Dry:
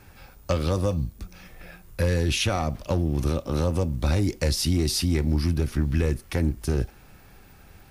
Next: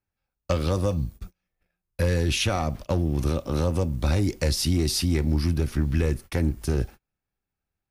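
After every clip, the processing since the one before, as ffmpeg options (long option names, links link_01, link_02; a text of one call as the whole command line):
ffmpeg -i in.wav -af "agate=range=-36dB:threshold=-37dB:ratio=16:detection=peak" out.wav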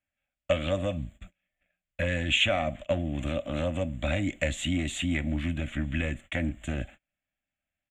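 ffmpeg -i in.wav -af "firequalizer=gain_entry='entry(140,0);entry(280,8);entry(420,-13);entry(590,15);entry(900,-2);entry(1900,14);entry(3400,13);entry(5000,-29);entry(7200,11);entry(10000,-16)':delay=0.05:min_phase=1,volume=-8.5dB" out.wav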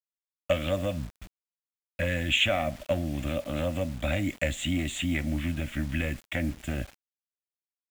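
ffmpeg -i in.wav -af "acrusher=bits=7:mix=0:aa=0.000001" out.wav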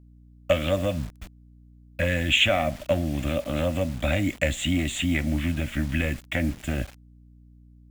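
ffmpeg -i in.wav -af "aeval=exprs='val(0)+0.002*(sin(2*PI*60*n/s)+sin(2*PI*2*60*n/s)/2+sin(2*PI*3*60*n/s)/3+sin(2*PI*4*60*n/s)/4+sin(2*PI*5*60*n/s)/5)':channel_layout=same,volume=4dB" out.wav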